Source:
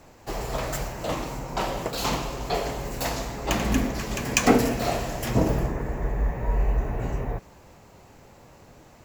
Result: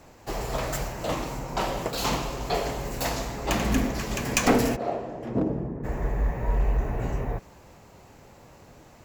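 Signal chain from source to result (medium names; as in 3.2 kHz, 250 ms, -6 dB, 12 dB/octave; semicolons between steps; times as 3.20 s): 4.75–5.83 s: band-pass filter 550 Hz -> 200 Hz, Q 0.99; one-sided clip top -18.5 dBFS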